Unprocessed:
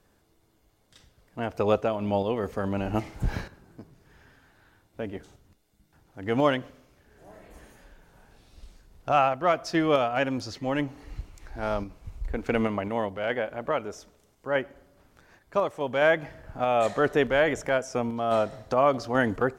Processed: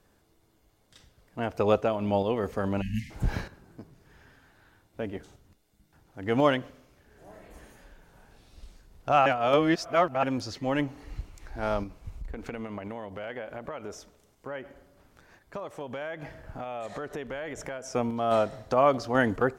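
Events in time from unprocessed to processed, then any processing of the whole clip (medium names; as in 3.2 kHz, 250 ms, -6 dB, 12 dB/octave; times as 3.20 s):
2.82–3.10 s: spectral selection erased 260–1600 Hz
9.26–10.23 s: reverse
12.10–17.95 s: compression, threshold -33 dBFS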